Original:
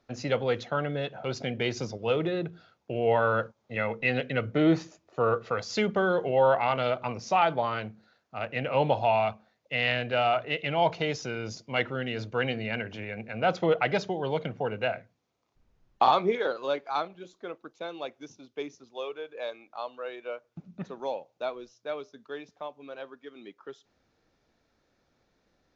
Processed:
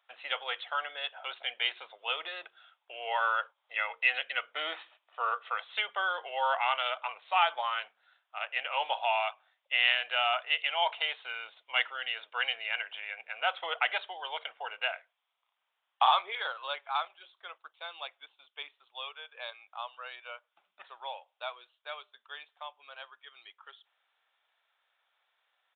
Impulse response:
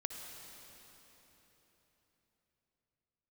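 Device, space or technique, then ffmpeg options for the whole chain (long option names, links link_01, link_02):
musical greeting card: -af "aresample=8000,aresample=44100,highpass=frequency=840:width=0.5412,highpass=frequency=840:width=1.3066,equalizer=frequency=3200:width_type=o:width=0.45:gain=7"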